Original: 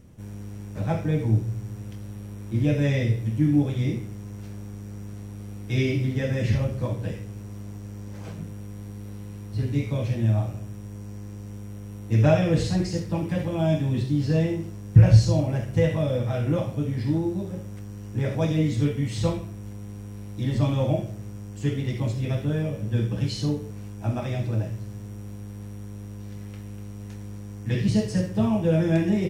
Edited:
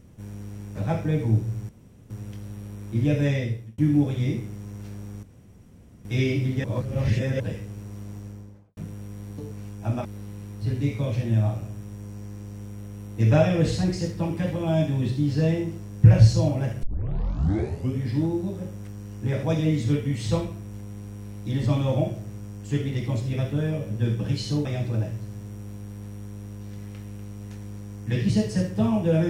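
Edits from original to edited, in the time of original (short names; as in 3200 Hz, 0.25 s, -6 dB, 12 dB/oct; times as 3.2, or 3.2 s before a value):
1.69 insert room tone 0.41 s
2.86–3.37 fade out
4.82–5.64 room tone
6.23–6.99 reverse
7.76–8.36 studio fade out
15.75 tape start 1.19 s
23.57–24.24 move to 8.97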